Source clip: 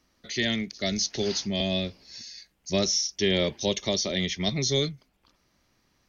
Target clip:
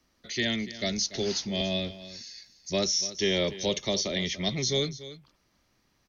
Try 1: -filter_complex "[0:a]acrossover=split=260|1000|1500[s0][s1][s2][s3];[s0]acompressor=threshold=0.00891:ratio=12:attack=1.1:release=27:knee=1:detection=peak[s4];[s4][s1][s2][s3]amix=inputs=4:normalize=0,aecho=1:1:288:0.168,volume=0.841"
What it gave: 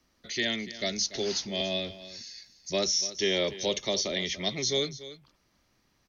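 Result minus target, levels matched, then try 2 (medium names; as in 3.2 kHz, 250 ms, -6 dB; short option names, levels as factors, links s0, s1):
compression: peak gain reduction +9.5 dB
-filter_complex "[0:a]acrossover=split=260|1000|1500[s0][s1][s2][s3];[s0]acompressor=threshold=0.0299:ratio=12:attack=1.1:release=27:knee=1:detection=peak[s4];[s4][s1][s2][s3]amix=inputs=4:normalize=0,aecho=1:1:288:0.168,volume=0.841"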